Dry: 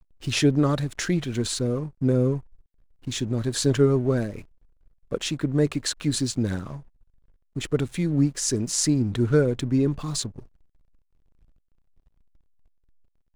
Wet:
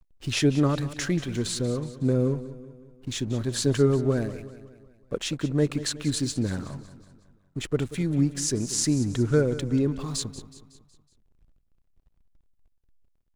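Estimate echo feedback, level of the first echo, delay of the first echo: 51%, -15.0 dB, 0.185 s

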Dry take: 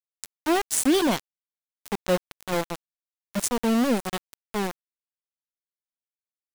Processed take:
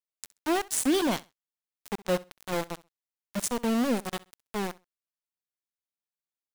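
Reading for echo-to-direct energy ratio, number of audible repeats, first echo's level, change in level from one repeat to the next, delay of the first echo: -21.0 dB, 2, -21.0 dB, -14.0 dB, 65 ms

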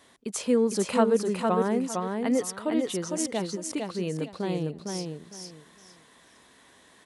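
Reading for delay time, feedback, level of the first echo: 0.456 s, 23%, -4.0 dB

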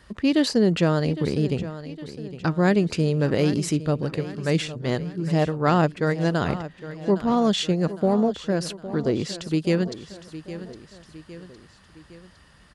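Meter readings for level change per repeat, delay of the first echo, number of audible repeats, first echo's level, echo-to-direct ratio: -5.5 dB, 0.81 s, 3, -14.0 dB, -12.5 dB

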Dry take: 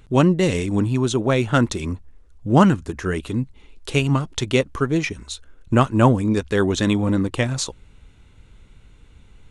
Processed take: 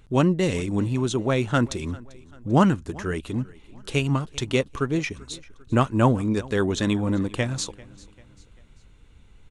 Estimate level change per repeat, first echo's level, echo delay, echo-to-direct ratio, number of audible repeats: -7.0 dB, -22.0 dB, 0.393 s, -21.0 dB, 2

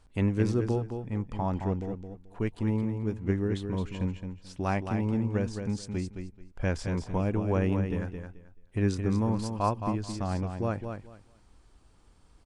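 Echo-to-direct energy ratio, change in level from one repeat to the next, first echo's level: -7.0 dB, -14.0 dB, -7.0 dB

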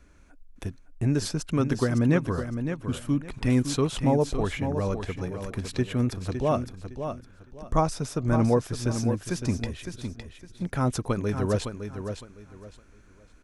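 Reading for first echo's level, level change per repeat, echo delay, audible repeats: -8.0 dB, -12.0 dB, 0.56 s, 3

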